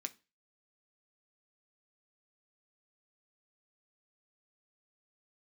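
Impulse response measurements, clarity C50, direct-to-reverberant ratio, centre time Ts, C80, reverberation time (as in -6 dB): 21.0 dB, 6.5 dB, 4 ms, 27.5 dB, 0.30 s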